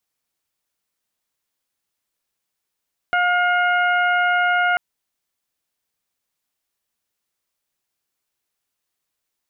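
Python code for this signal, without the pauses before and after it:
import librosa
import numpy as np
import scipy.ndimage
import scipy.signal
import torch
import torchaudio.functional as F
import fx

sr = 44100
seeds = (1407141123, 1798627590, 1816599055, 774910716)

y = fx.additive_steady(sr, length_s=1.64, hz=713.0, level_db=-19.5, upper_db=(2.0, -6.5, -12.0))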